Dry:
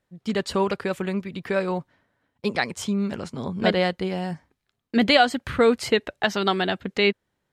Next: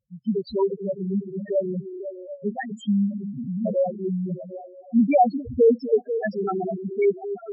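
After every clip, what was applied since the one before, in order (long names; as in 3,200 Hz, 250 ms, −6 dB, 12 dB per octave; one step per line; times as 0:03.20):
echo through a band-pass that steps 248 ms, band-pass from 280 Hz, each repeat 0.7 octaves, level −7 dB
spectral peaks only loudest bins 2
level +4 dB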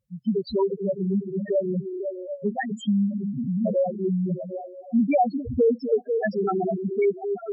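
downward compressor 2 to 1, threshold −26 dBFS, peak gain reduction 8 dB
level +3.5 dB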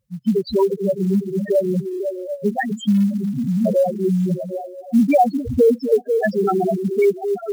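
floating-point word with a short mantissa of 4 bits
level +6 dB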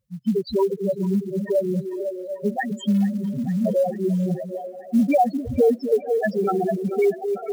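delay with a band-pass on its return 442 ms, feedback 73%, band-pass 1,100 Hz, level −15 dB
level −3.5 dB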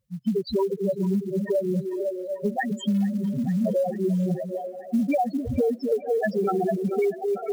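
downward compressor, threshold −20 dBFS, peak gain reduction 7 dB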